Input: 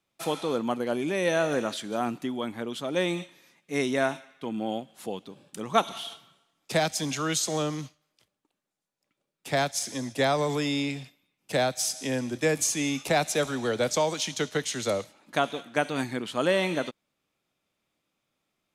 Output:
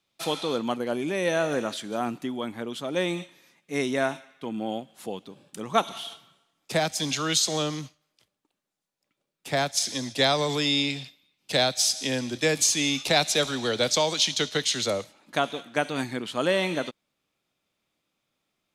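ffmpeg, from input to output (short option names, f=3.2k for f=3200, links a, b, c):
-af "asetnsamples=n=441:p=0,asendcmd='0.76 equalizer g 0.5;7 equalizer g 8.5;7.79 equalizer g 2;9.77 equalizer g 11;14.86 equalizer g 2.5',equalizer=f=4k:t=o:w=1.2:g=7.5"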